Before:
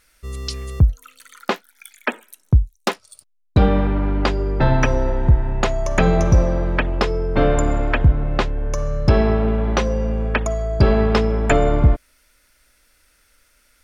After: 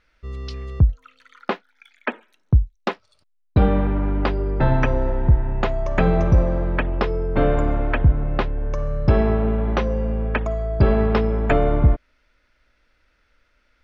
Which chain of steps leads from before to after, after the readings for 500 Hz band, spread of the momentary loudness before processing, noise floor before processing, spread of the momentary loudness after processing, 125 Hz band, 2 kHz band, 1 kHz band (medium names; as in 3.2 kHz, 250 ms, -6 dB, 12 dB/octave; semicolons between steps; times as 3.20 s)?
-2.0 dB, 11 LU, -60 dBFS, 12 LU, -1.5 dB, -3.5 dB, -2.5 dB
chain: distance through air 240 m; trim -1.5 dB